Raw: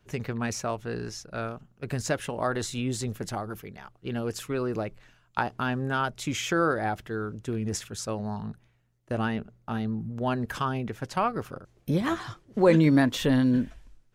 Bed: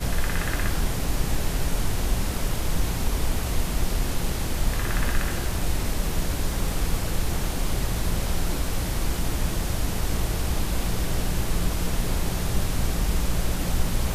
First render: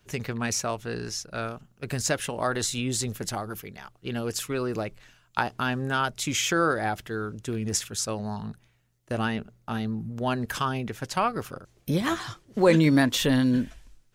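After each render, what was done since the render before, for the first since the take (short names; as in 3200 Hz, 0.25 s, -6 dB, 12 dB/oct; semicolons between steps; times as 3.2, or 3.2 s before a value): high shelf 2500 Hz +8.5 dB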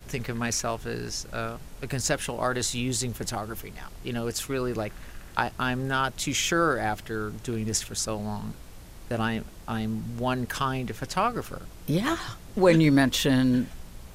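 add bed -19.5 dB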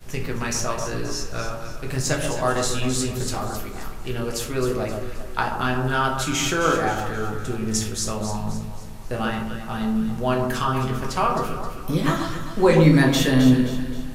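on a send: echo with dull and thin repeats by turns 0.132 s, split 1300 Hz, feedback 66%, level -5.5 dB; on the sum: shoebox room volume 54 m³, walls mixed, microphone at 0.61 m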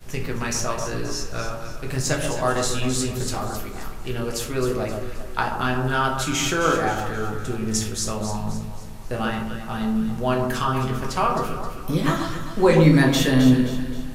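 nothing audible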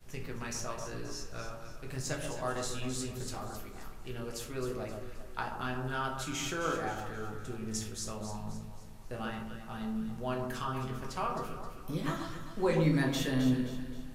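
gain -13 dB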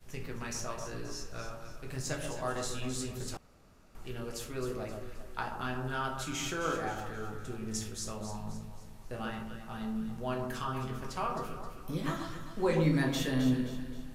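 3.37–3.95 room tone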